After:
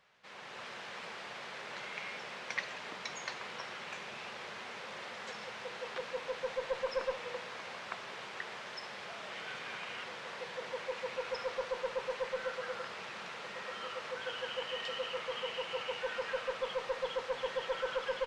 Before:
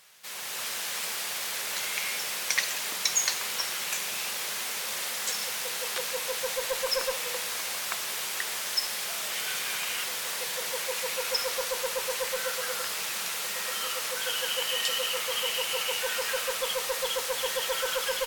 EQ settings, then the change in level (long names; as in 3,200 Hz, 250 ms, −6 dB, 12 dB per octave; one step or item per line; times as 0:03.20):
head-to-tape spacing loss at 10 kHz 35 dB
−1.5 dB